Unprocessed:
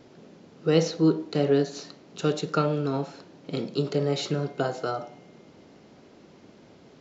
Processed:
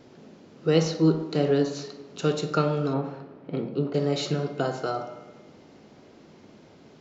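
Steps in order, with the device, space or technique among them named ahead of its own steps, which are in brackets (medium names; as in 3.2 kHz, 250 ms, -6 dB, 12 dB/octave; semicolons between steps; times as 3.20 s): saturated reverb return (on a send at -7 dB: reverberation RT60 1.1 s, pre-delay 8 ms + saturation -16.5 dBFS, distortion -18 dB); 2.93–3.93 s: on the sum: low-pass 2.5 kHz -> 1.5 kHz 12 dB/octave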